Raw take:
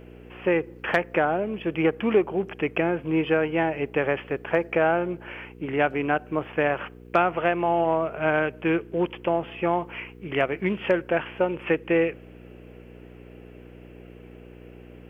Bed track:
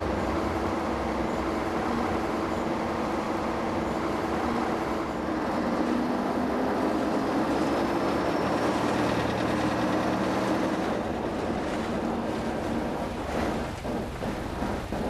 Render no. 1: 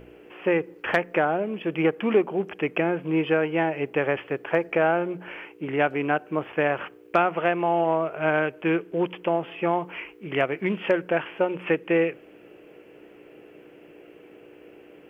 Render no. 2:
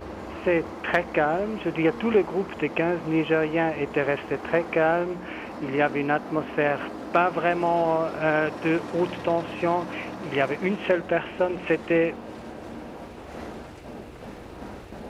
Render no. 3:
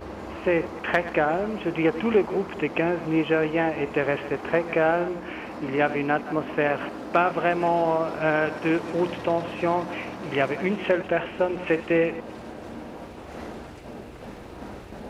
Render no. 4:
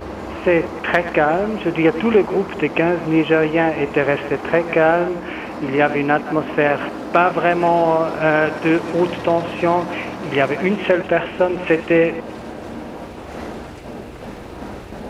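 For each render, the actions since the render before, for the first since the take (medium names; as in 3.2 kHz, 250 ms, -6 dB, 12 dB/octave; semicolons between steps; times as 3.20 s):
de-hum 60 Hz, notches 4
add bed track -9.5 dB
chunks repeated in reverse 113 ms, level -14 dB
trim +7 dB; peak limiter -3 dBFS, peak gain reduction 1.5 dB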